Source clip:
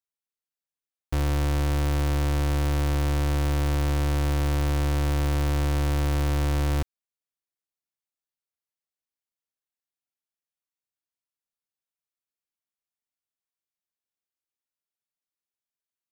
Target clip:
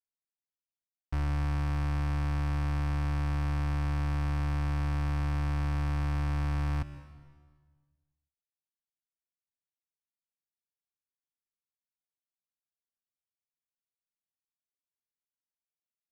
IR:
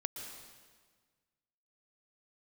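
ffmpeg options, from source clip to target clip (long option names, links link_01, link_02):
-filter_complex "[0:a]lowpass=frequency=2900:width=0.5412,lowpass=frequency=2900:width=1.3066,equalizer=frequency=490:width_type=o:width=0.67:gain=-14,adynamicsmooth=sensitivity=8:basefreq=550,asplit=2[link_01][link_02];[1:a]atrim=start_sample=2205[link_03];[link_02][link_03]afir=irnorm=-1:irlink=0,volume=-4dB[link_04];[link_01][link_04]amix=inputs=2:normalize=0,volume=-8.5dB"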